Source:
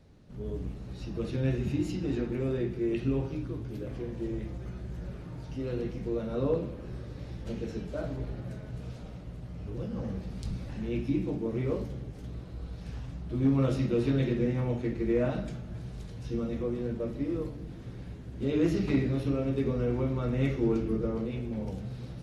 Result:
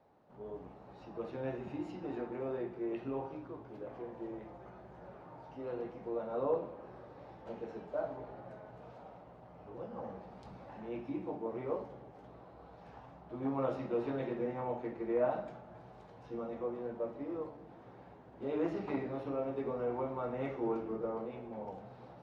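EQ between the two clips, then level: band-pass filter 830 Hz, Q 2.5; +6.0 dB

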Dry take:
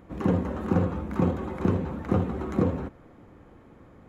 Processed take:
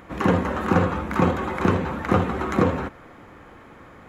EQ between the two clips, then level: peaking EQ 1.6 kHz +10.5 dB 2.7 oct; treble shelf 3.5 kHz +9 dB; +2.0 dB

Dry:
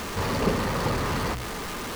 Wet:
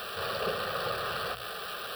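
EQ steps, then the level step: high-pass 730 Hz 6 dB/octave; peaking EQ 12 kHz -3 dB 1.8 oct; static phaser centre 1.4 kHz, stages 8; +1.5 dB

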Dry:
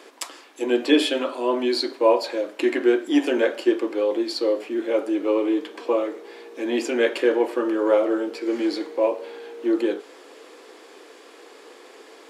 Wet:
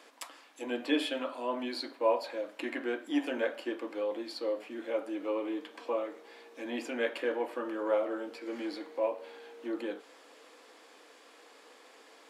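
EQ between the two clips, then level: dynamic bell 6.3 kHz, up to -7 dB, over -46 dBFS, Q 0.77; peaking EQ 380 Hz -12.5 dB 0.4 oct; -8.0 dB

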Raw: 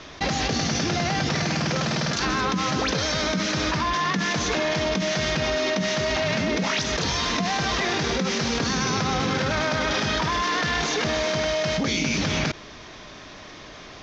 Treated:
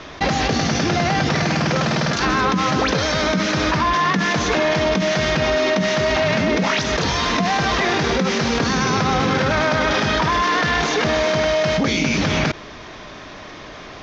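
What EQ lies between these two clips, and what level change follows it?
bass shelf 430 Hz -3 dB; treble shelf 3.2 kHz -9 dB; +8.0 dB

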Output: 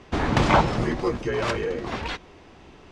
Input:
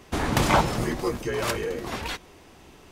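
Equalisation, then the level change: distance through air 120 m; +2.5 dB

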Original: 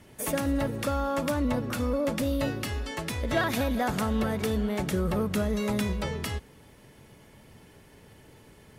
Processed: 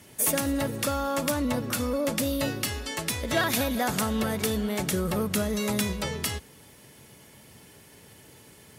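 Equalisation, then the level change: high-pass 75 Hz; treble shelf 3.6 kHz +11 dB; 0.0 dB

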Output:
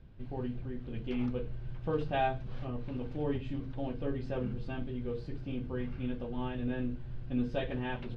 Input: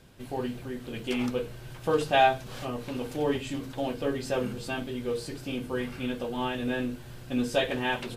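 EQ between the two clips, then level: distance through air 270 m; pre-emphasis filter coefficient 0.8; RIAA curve playback; +3.5 dB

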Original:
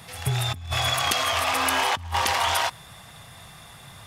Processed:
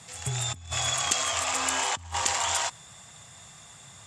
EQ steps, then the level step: high-pass 66 Hz; resonant low-pass 7.4 kHz, resonance Q 9.6; -6.5 dB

